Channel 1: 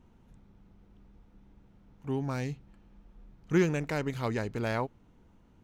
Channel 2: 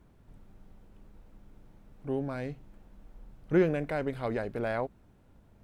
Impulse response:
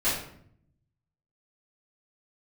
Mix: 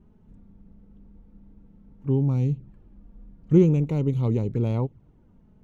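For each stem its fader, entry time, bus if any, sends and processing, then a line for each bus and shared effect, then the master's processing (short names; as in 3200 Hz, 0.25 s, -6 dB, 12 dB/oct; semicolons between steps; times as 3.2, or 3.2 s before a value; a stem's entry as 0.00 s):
+2.0 dB, 0.00 s, no send, bell 130 Hz +10.5 dB 1.1 oct; envelope flanger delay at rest 5.3 ms, full sweep at -25 dBFS
-0.5 dB, 0.00 s, no send, inverse Chebyshev low-pass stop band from 2400 Hz, stop band 70 dB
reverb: off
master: high shelf 2100 Hz -10 dB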